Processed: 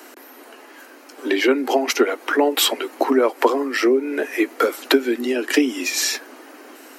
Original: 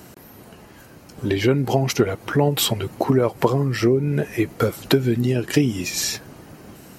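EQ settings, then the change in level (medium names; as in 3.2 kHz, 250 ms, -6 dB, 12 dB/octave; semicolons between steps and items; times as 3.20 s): steep high-pass 250 Hz 96 dB/octave; peaking EQ 1.7 kHz +5.5 dB 1.7 oct; +1.5 dB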